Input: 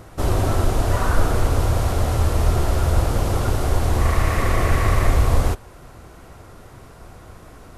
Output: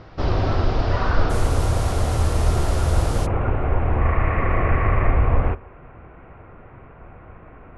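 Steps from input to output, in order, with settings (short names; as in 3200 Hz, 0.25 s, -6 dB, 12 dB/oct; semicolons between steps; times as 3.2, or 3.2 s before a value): elliptic low-pass 5100 Hz, stop band 60 dB, from 1.29 s 11000 Hz, from 3.25 s 2500 Hz; reverb RT60 1.0 s, pre-delay 3 ms, DRR 19 dB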